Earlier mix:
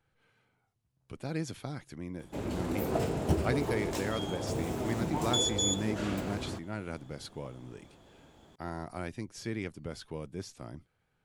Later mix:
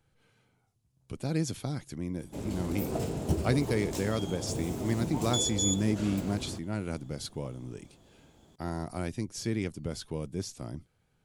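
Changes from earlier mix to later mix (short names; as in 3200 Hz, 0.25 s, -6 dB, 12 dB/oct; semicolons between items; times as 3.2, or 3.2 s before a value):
speech +6.0 dB; master: add EQ curve 200 Hz 0 dB, 1700 Hz -7 dB, 6700 Hz +2 dB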